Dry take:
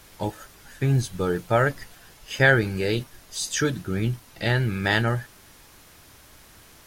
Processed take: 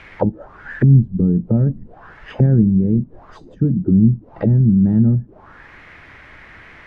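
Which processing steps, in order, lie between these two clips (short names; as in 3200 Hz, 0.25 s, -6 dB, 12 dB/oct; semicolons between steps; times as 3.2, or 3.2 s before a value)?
envelope low-pass 210–2400 Hz down, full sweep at -24 dBFS; gain +7 dB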